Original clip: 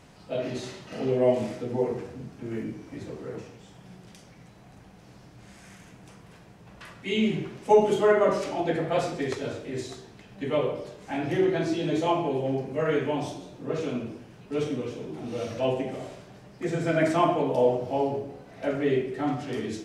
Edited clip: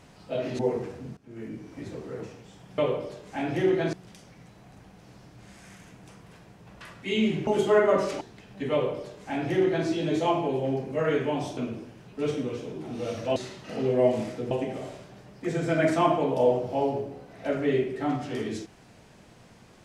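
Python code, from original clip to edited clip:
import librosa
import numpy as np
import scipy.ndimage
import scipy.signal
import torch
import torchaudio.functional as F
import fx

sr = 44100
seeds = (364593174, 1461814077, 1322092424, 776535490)

y = fx.edit(x, sr, fx.move(start_s=0.59, length_s=1.15, to_s=15.69),
    fx.fade_in_from(start_s=2.32, length_s=0.6, floor_db=-18.5),
    fx.cut(start_s=7.47, length_s=0.33),
    fx.cut(start_s=8.54, length_s=1.48),
    fx.duplicate(start_s=10.53, length_s=1.15, to_s=3.93),
    fx.cut(start_s=13.38, length_s=0.52), tone=tone)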